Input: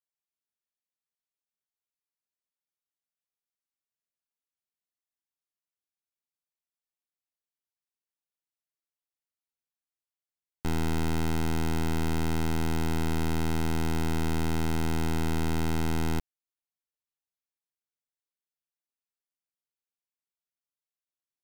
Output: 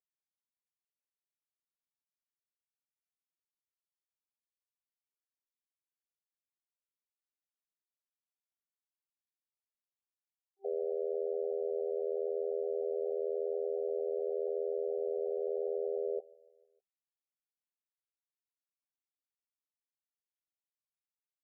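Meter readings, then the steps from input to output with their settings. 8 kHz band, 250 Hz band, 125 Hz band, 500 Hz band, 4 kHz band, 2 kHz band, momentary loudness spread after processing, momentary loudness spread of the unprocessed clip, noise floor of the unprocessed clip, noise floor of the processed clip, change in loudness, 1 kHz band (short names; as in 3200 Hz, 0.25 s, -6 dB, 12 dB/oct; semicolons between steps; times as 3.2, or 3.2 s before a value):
under -35 dB, under -15 dB, under -40 dB, +6.0 dB, under -40 dB, under -40 dB, 1 LU, 1 LU, under -85 dBFS, under -85 dBFS, -5.5 dB, -18.5 dB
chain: CVSD 16 kbps; comb 4.2 ms, depth 66%; sample leveller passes 5; feedback echo 0.15 s, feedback 56%, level -23.5 dB; FFT band-pass 390–780 Hz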